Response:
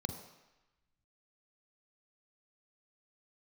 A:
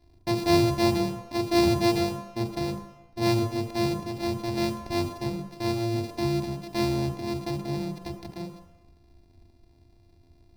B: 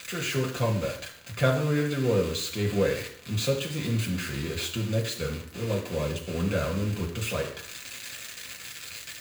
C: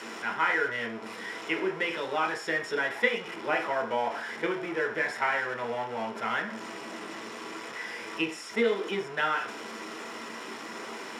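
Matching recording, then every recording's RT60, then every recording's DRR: A; 1.0, 0.60, 0.40 seconds; 6.0, 0.5, 0.5 decibels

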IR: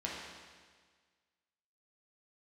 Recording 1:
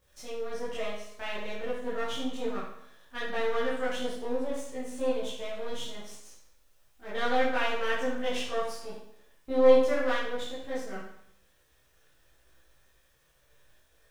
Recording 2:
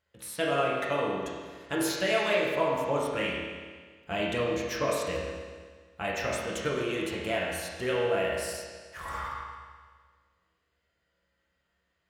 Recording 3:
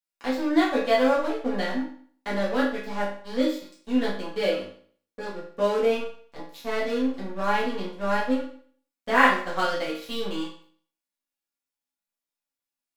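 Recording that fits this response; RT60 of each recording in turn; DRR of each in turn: 2; 0.70, 1.6, 0.50 seconds; −9.5, −5.0, −8.5 decibels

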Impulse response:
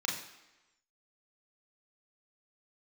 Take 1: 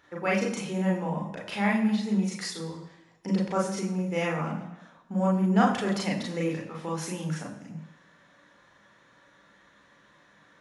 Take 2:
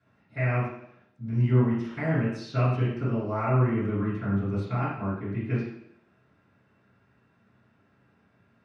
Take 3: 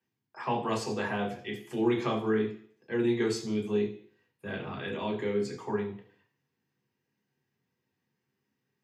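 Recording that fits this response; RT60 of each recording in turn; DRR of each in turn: 1; 1.0, 0.70, 0.50 seconds; −2.5, −13.5, −3.0 decibels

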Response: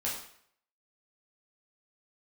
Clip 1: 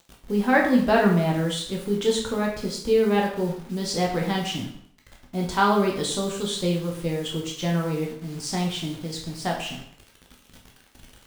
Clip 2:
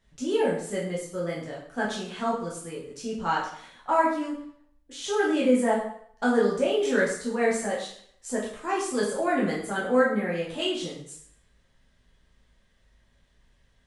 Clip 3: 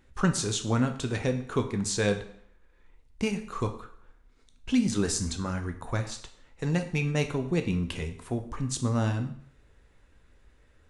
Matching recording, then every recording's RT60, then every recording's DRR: 2; 0.65, 0.65, 0.60 seconds; −1.5, −6.0, 6.0 decibels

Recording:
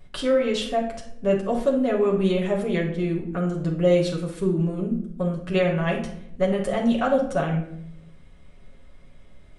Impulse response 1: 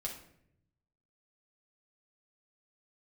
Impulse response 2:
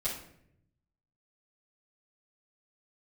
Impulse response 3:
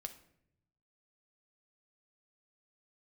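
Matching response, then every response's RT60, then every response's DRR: 1; 0.70 s, 0.70 s, non-exponential decay; −3.0, −11.5, 6.0 decibels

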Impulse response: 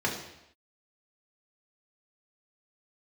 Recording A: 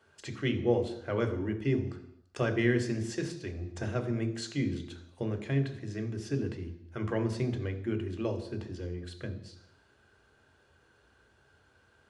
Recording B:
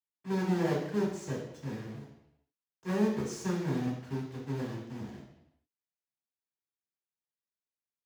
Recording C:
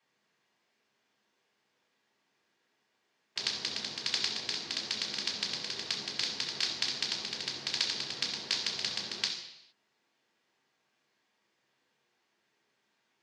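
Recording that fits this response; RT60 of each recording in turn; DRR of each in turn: C; non-exponential decay, non-exponential decay, non-exponential decay; 5.5, −10.0, −3.0 decibels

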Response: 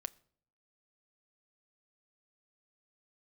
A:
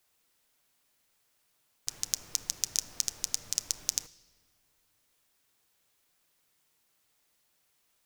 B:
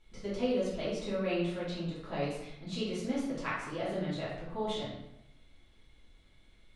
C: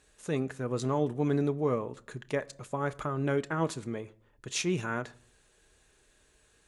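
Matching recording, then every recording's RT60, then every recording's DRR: C; 1.8, 0.90, 0.55 seconds; 12.0, −10.0, 10.5 decibels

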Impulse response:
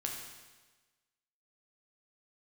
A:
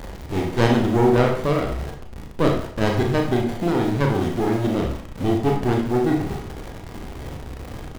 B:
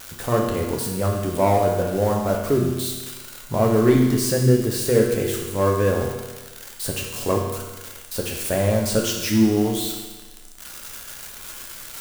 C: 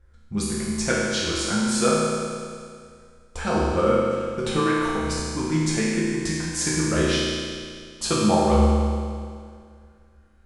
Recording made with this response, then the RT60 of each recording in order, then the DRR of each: B; 0.55, 1.3, 2.1 seconds; 0.5, −0.5, −7.0 decibels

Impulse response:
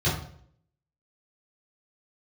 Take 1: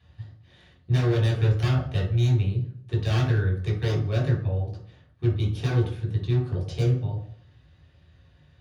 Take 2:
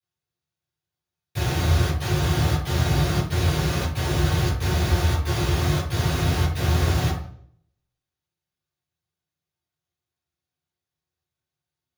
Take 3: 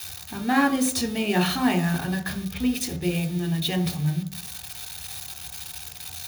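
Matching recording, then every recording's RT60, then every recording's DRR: 2; 0.60, 0.60, 0.60 seconds; −3.5, −11.0, 5.5 decibels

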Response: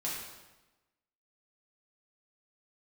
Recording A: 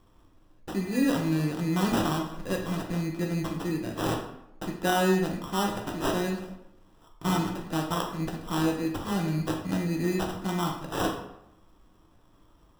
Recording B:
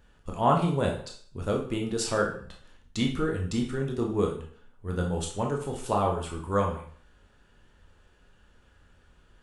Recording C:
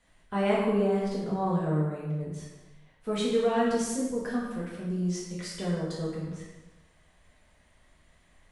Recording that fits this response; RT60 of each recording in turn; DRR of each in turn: C; 0.80, 0.50, 1.1 seconds; 0.0, 0.0, −6.5 decibels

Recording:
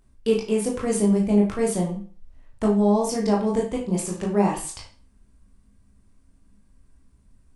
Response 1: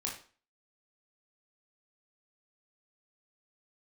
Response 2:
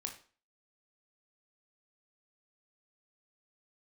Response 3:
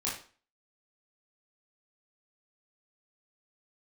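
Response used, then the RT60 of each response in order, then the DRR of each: 1; 0.40, 0.40, 0.40 seconds; −2.5, 3.0, −6.5 decibels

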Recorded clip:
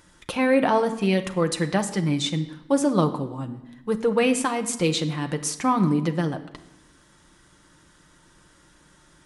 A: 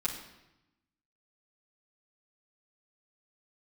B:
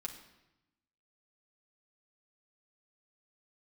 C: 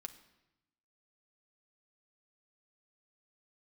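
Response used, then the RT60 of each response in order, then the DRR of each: C; 0.90, 0.95, 0.95 seconds; −7.5, −1.0, 5.5 decibels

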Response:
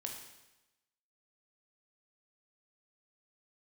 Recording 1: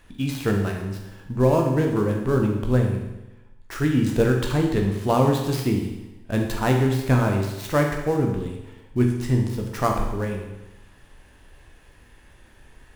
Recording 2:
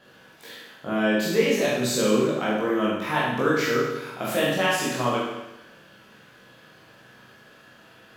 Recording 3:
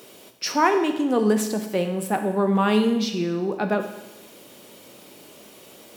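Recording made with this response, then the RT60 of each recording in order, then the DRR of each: 1; 1.0, 1.0, 1.0 seconds; 1.5, −7.5, 6.0 decibels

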